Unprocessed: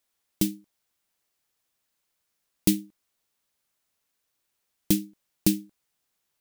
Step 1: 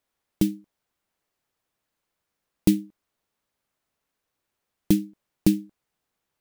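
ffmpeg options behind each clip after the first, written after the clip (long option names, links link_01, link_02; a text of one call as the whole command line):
ffmpeg -i in.wav -af "highshelf=frequency=2500:gain=-11,volume=4dB" out.wav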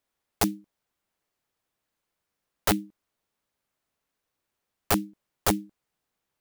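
ffmpeg -i in.wav -af "aeval=exprs='(mod(4.73*val(0)+1,2)-1)/4.73':channel_layout=same,volume=-1.5dB" out.wav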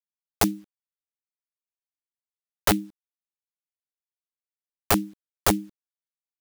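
ffmpeg -i in.wav -filter_complex "[0:a]asplit=2[link_01][link_02];[link_02]acompressor=threshold=-30dB:ratio=8,volume=1dB[link_03];[link_01][link_03]amix=inputs=2:normalize=0,acrusher=bits=9:mix=0:aa=0.000001" out.wav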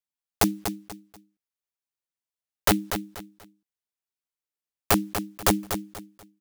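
ffmpeg -i in.wav -af "aecho=1:1:242|484|726:0.376|0.105|0.0295" out.wav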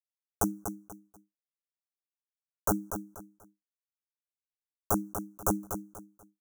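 ffmpeg -i in.wav -af "agate=range=-33dB:threshold=-52dB:ratio=3:detection=peak,asuperstop=centerf=3000:order=20:qfactor=0.7,volume=-6.5dB" out.wav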